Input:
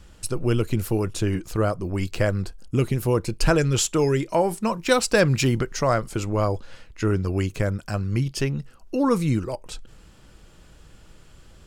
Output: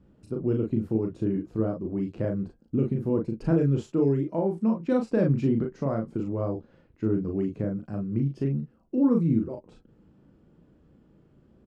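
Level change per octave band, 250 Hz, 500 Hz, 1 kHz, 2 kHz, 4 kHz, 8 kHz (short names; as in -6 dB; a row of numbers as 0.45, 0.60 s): +0.5 dB, -5.0 dB, -12.5 dB, -18.0 dB, under -25 dB, under -30 dB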